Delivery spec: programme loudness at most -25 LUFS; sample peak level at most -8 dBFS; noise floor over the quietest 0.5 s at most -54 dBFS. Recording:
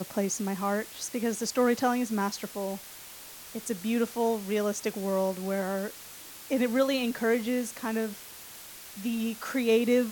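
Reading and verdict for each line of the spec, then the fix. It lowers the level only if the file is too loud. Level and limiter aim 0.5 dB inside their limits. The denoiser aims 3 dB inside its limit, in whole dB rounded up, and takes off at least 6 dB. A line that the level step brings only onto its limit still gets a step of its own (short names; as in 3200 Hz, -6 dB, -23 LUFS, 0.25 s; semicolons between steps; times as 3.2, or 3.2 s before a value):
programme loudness -29.5 LUFS: OK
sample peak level -14.0 dBFS: OK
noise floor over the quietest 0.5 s -46 dBFS: fail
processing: denoiser 11 dB, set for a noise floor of -46 dBFS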